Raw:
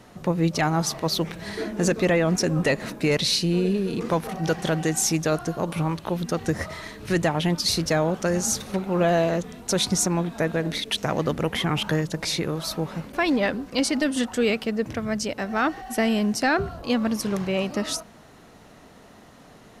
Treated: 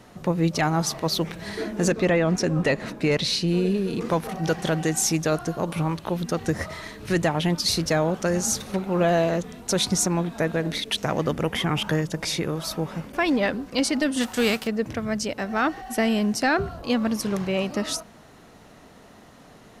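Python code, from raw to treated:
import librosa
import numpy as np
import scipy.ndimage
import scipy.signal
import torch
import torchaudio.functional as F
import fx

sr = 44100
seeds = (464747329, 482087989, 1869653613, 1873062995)

y = fx.high_shelf(x, sr, hz=7900.0, db=-10.5, at=(1.92, 3.48))
y = fx.notch(y, sr, hz=4100.0, q=12.0, at=(11.12, 13.37))
y = fx.envelope_flatten(y, sr, power=0.6, at=(14.2, 14.66), fade=0.02)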